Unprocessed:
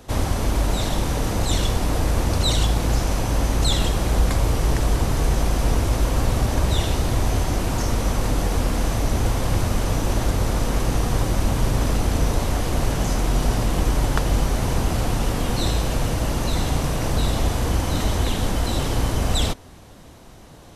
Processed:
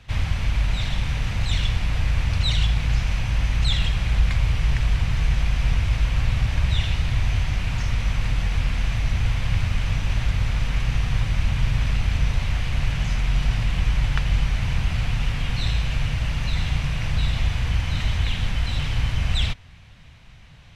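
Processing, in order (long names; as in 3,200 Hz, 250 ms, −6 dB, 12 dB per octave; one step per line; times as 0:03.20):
drawn EQ curve 140 Hz 0 dB, 330 Hz −19 dB, 1,200 Hz −7 dB, 2,400 Hz +5 dB, 12,000 Hz −20 dB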